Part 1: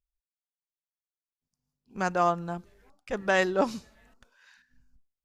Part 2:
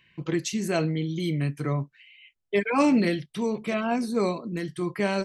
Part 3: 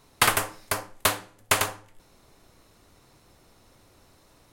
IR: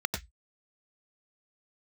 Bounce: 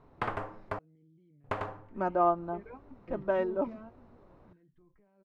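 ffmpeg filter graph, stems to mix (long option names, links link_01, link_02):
-filter_complex "[0:a]agate=range=-33dB:threshold=-55dB:ratio=3:detection=peak,equalizer=frequency=1800:width=3.7:gain=-6,aecho=1:1:3.2:0.6,volume=-1dB,afade=type=out:start_time=3:duration=0.73:silence=0.334965,asplit=2[link_01][link_02];[1:a]acompressor=threshold=-32dB:ratio=6,alimiter=level_in=9.5dB:limit=-24dB:level=0:latency=1:release=72,volume=-9.5dB,volume=-4dB[link_03];[2:a]acompressor=threshold=-31dB:ratio=2,volume=1dB,asplit=3[link_04][link_05][link_06];[link_04]atrim=end=0.79,asetpts=PTS-STARTPTS,afade=type=out:start_time=0.786:duration=0.004:curve=hsin[link_07];[link_05]atrim=start=0.79:end=1.44,asetpts=PTS-STARTPTS,volume=0[link_08];[link_06]atrim=start=1.44,asetpts=PTS-STARTPTS,afade=type=in:duration=0.004:curve=hsin[link_09];[link_07][link_08][link_09]concat=n=3:v=0:a=1[link_10];[link_02]apad=whole_len=231200[link_11];[link_03][link_11]sidechaingate=range=-19dB:threshold=-55dB:ratio=16:detection=peak[link_12];[link_01][link_12][link_10]amix=inputs=3:normalize=0,lowpass=1100"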